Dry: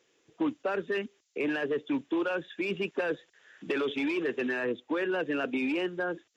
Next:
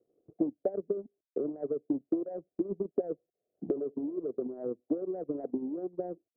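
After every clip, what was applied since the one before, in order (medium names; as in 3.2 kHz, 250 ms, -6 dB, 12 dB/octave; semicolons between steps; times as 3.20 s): Chebyshev low-pass 740 Hz, order 8; in parallel at +1 dB: compression 12:1, threshold -38 dBFS, peak gain reduction 12.5 dB; on the sum: transient shaper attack +9 dB, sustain -11 dB; trim -8 dB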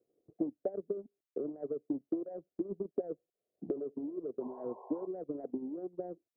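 painted sound noise, 4.40–5.07 s, 370–1100 Hz -47 dBFS; trim -4.5 dB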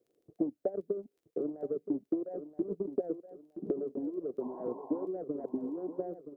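crackle 11 per s -62 dBFS; feedback delay 973 ms, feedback 32%, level -11 dB; trim +2.5 dB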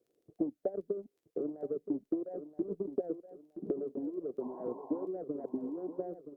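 trim -1.5 dB; Opus 128 kbps 48 kHz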